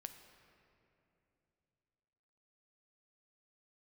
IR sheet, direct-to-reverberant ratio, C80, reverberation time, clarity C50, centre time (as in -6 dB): 7.0 dB, 9.5 dB, 2.9 s, 8.5 dB, 30 ms